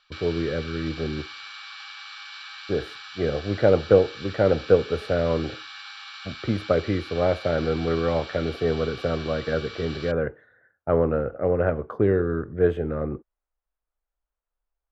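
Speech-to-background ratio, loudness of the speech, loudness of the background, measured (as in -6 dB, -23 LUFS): 13.5 dB, -25.0 LUFS, -38.5 LUFS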